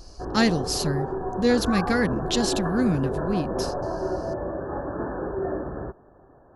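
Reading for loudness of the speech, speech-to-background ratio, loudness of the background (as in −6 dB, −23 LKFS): −25.0 LKFS, 5.0 dB, −30.0 LKFS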